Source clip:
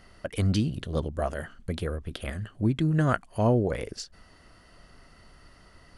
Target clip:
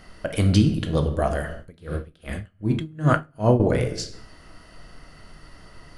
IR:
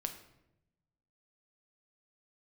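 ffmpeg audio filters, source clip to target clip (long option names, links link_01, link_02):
-filter_complex "[1:a]atrim=start_sample=2205,afade=type=out:start_time=0.4:duration=0.01,atrim=end_sample=18081[link_01];[0:a][link_01]afir=irnorm=-1:irlink=0,asettb=1/sr,asplit=3[link_02][link_03][link_04];[link_02]atrim=end=1.584[link_05];[link_03]atrim=start=1.58:end=3.6,asetpts=PTS-STARTPTS,afade=type=in:duration=0.004:curve=qsin,afade=type=out:start_time=2.016:duration=0.004:curve=qsin,aeval=exprs='val(0)*pow(10,-28*(0.5-0.5*cos(2*PI*2.6*n/s))/20)':channel_layout=same[link_06];[link_04]atrim=start=3.596[link_07];[link_05][link_06]acrossfade=duration=0.004:curve1=hsin:curve2=qsin[link_08];[link_08][link_07]acrossfade=duration=0.004:curve1=qsin:curve2=hsin,volume=7dB"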